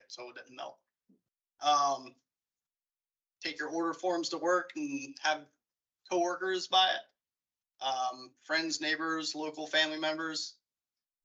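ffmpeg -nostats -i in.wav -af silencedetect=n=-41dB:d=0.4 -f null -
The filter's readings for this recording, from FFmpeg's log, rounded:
silence_start: 0.70
silence_end: 1.61 | silence_duration: 0.92
silence_start: 2.08
silence_end: 3.42 | silence_duration: 1.33
silence_start: 5.39
silence_end: 6.11 | silence_duration: 0.72
silence_start: 7.01
silence_end: 7.82 | silence_duration: 0.81
silence_start: 10.50
silence_end: 11.24 | silence_duration: 0.75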